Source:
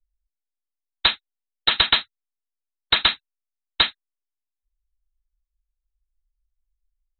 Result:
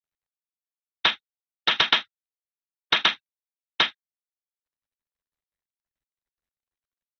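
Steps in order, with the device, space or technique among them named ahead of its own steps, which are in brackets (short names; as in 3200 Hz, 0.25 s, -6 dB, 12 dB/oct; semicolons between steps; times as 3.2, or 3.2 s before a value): Bluetooth headset (HPF 150 Hz 12 dB/oct; downsampling 8000 Hz; SBC 64 kbps 32000 Hz)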